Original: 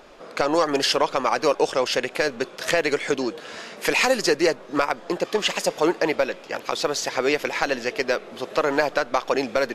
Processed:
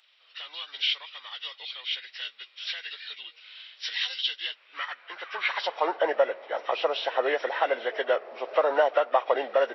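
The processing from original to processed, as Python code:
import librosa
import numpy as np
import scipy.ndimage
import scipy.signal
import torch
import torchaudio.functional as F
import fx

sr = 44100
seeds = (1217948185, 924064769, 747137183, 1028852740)

y = fx.freq_compress(x, sr, knee_hz=1200.0, ratio=1.5)
y = scipy.signal.sosfilt(scipy.signal.ellip(4, 1.0, 40, 160.0, 'highpass', fs=sr, output='sos'), y)
y = fx.filter_sweep_highpass(y, sr, from_hz=3400.0, to_hz=610.0, start_s=4.36, end_s=6.08, q=1.9)
y = y * 10.0 ** (-3.5 / 20.0)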